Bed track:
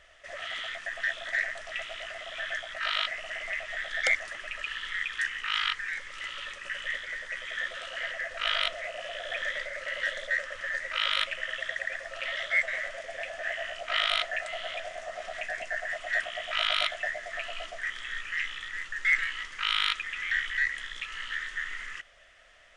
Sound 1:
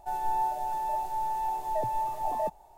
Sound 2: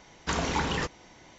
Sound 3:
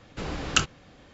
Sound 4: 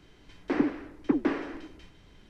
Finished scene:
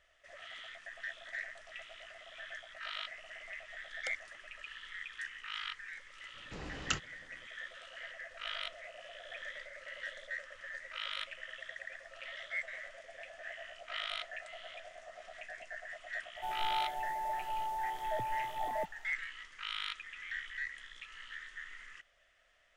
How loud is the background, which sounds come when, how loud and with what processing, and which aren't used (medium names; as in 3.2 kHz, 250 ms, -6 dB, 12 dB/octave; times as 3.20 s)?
bed track -12.5 dB
6.34 s: add 3 -12 dB
16.36 s: add 1 -6.5 dB
not used: 2, 4